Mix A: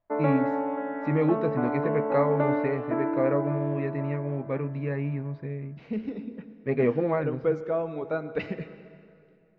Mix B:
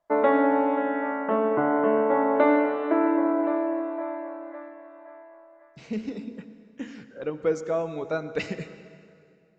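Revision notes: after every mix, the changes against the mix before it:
first voice: muted
background +5.0 dB
master: remove high-frequency loss of the air 330 metres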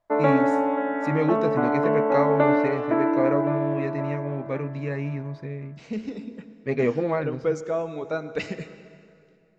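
first voice: unmuted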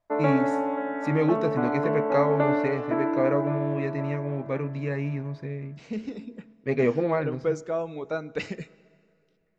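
second voice: send −11.5 dB
background −4.0 dB

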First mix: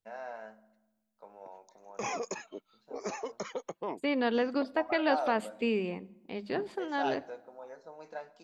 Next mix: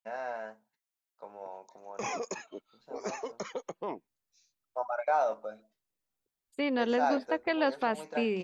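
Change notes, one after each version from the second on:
first voice +6.5 dB
second voice: entry +2.55 s
reverb: off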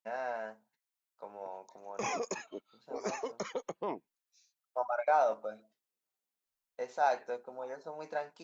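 second voice: muted

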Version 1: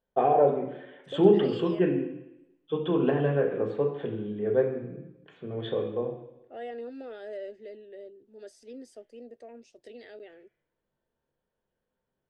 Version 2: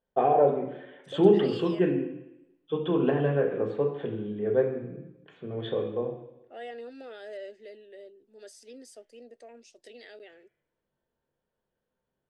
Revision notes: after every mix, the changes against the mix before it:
second voice: add spectral tilt +2.5 dB per octave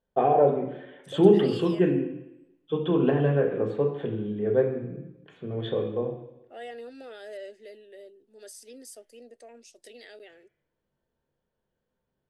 first voice: add low-shelf EQ 250 Hz +5.5 dB
master: remove high-frequency loss of the air 68 metres

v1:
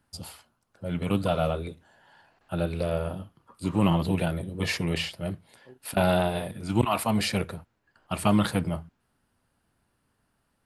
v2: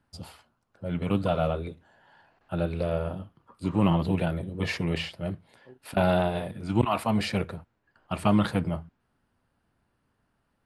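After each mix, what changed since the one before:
master: add low-pass filter 3,000 Hz 6 dB per octave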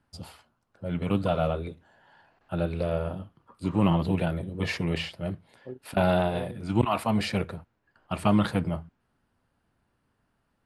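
second voice +11.0 dB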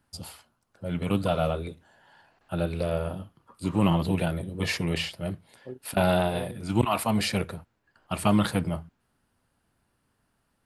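master: remove low-pass filter 3,000 Hz 6 dB per octave

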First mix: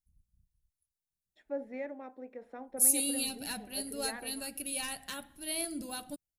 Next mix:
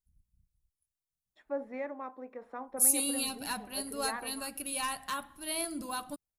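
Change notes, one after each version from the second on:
master: add parametric band 1,100 Hz +15 dB 0.58 octaves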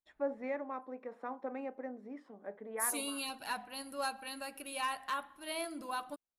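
first voice: entry −1.30 s
second voice: add bass and treble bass −15 dB, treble −11 dB

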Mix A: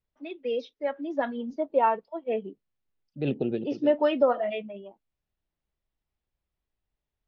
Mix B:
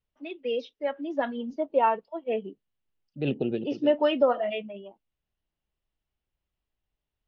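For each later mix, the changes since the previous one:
master: add parametric band 2,900 Hz +6.5 dB 0.25 octaves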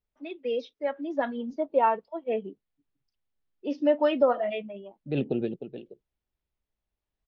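second voice: entry +1.90 s
master: add parametric band 2,900 Hz −6.5 dB 0.25 octaves

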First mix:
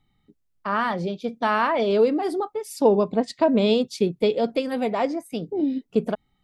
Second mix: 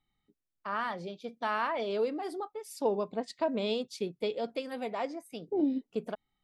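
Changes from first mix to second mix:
first voice −8.5 dB
master: add low-shelf EQ 340 Hz −8.5 dB

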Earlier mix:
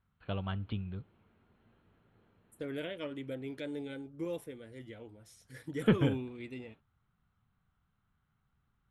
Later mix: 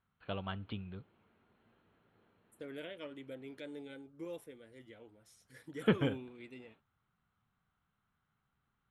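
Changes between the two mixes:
second voice −5.0 dB
master: add low-shelf EQ 150 Hz −11 dB

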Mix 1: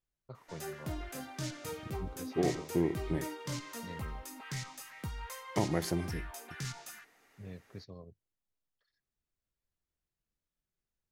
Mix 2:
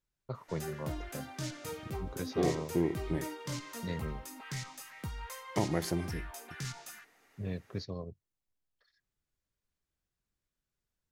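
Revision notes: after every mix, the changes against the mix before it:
first voice +9.0 dB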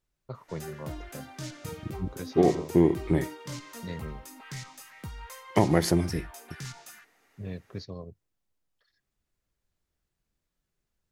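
second voice +9.5 dB

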